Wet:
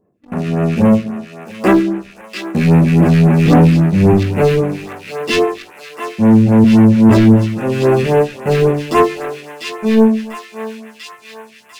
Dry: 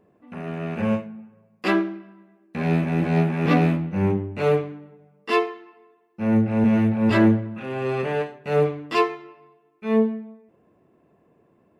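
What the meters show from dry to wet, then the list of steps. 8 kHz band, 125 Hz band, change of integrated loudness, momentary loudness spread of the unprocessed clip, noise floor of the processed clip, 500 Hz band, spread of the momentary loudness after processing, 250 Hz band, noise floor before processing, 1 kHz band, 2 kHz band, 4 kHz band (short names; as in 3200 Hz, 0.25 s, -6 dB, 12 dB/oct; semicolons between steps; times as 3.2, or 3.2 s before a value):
n/a, +12.5 dB, +10.5 dB, 16 LU, -43 dBFS, +9.5 dB, 18 LU, +11.0 dB, -63 dBFS, +8.0 dB, +6.5 dB, +10.5 dB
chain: sample leveller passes 3; thinning echo 0.695 s, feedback 76%, high-pass 1000 Hz, level -7 dB; phaser stages 2, 3.7 Hz, lowest notch 750–4500 Hz; gain +3.5 dB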